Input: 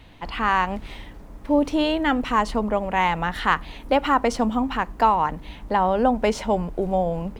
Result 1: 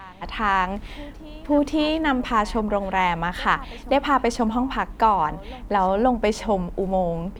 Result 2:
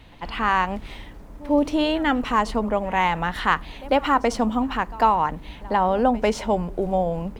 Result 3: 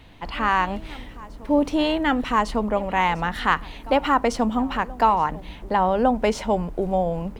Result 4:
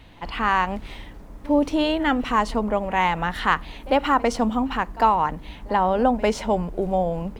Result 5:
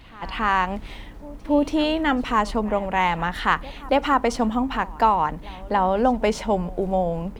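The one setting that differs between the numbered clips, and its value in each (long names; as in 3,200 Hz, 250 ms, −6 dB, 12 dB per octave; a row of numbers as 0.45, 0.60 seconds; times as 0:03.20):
backwards echo, delay time: 529, 98, 1,154, 51, 280 milliseconds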